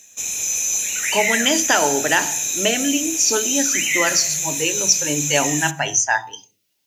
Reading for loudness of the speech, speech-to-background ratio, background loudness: -20.0 LUFS, -0.5 dB, -19.5 LUFS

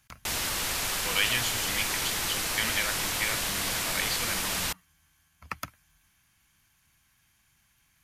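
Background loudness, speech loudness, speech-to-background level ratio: -28.0 LUFS, -33.0 LUFS, -5.0 dB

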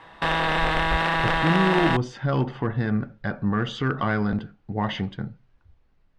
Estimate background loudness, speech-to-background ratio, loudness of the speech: -23.0 LUFS, -3.5 dB, -26.5 LUFS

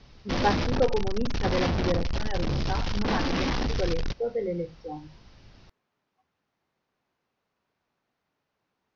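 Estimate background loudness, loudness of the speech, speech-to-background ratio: -30.0 LUFS, -31.5 LUFS, -1.5 dB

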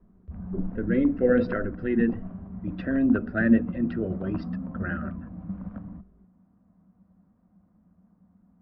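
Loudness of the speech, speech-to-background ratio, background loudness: -26.0 LUFS, 11.0 dB, -37.0 LUFS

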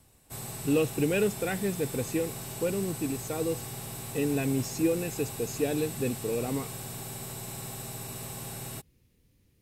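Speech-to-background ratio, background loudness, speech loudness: 7.0 dB, -38.0 LUFS, -31.0 LUFS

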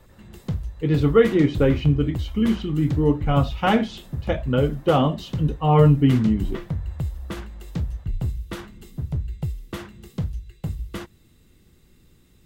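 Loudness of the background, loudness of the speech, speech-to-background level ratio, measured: -31.5 LUFS, -20.5 LUFS, 11.0 dB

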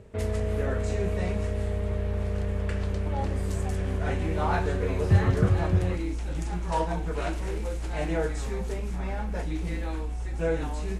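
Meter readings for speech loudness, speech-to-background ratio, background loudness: -29.5 LUFS, 2.5 dB, -32.0 LUFS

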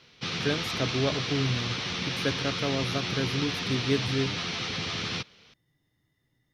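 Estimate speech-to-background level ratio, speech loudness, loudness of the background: -1.0 dB, -31.5 LUFS, -30.5 LUFS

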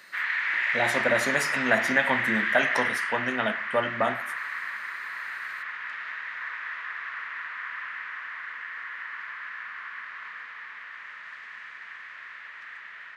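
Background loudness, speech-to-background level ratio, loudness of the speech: -30.0 LUFS, 2.5 dB, -27.5 LUFS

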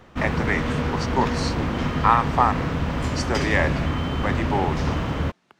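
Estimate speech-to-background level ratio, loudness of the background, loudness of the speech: 0.0 dB, -25.5 LUFS, -25.5 LUFS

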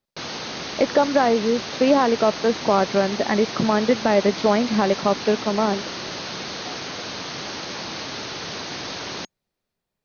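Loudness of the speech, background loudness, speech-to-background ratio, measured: -20.5 LUFS, -30.0 LUFS, 9.5 dB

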